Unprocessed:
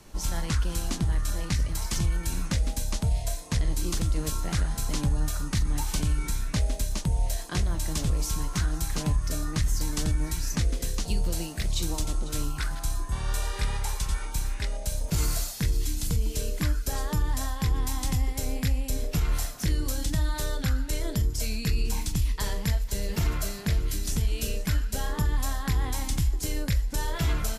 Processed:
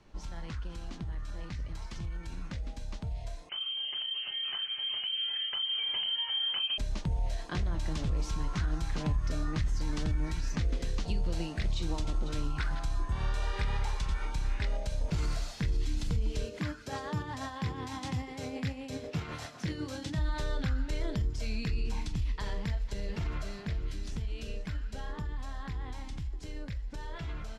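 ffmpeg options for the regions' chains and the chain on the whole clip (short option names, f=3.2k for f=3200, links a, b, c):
-filter_complex "[0:a]asettb=1/sr,asplit=3[a][b][c];[a]atrim=end=3.494[d];[b]atrim=start=3.49:end=6.78,asetpts=PTS-STARTPTS,afade=t=in:d=0.004:c=qsin,afade=t=out:st=3.286:d=0.004:c=qsin,lowpass=f=2.7k:t=q:w=0.5098,lowpass=f=2.7k:t=q:w=0.6013,lowpass=f=2.7k:t=q:w=0.9,lowpass=f=2.7k:t=q:w=2.563,afreqshift=-3200,volume=17.5dB,asoftclip=hard,volume=-17.5dB,asplit=2[e][f];[f]adelay=30,volume=-10.5dB[g];[e][g]amix=inputs=2:normalize=0,atrim=end_sample=145089[h];[c]atrim=start=6.776[i];[d][h]acrossfade=d=0.004:c1=hsin:c2=qsin[j];[j][i]acrossfade=d=0.004:c1=qsin:c2=hsin,asettb=1/sr,asplit=3[k][l][m];[k]atrim=end=16.454[n];[l]atrim=start=16.45:end=20.19,asetpts=PTS-STARTPTS,afade=t=in:d=0.004:c=qsin,afade=t=out:st=3.736:d=0.004:c=qsin,highpass=f=100:w=0.5412,highpass=f=100:w=1.3066,tremolo=f=8:d=0.43[o];[m]atrim=start=20.186[p];[n][o]acrossfade=d=0.004:c1=hsin:c2=qsin[q];[q][p]acrossfade=d=0.004:c1=qsin:c2=hsin,alimiter=limit=-22dB:level=0:latency=1:release=107,lowpass=3.8k,dynaudnorm=f=670:g=17:m=8dB,volume=-8dB"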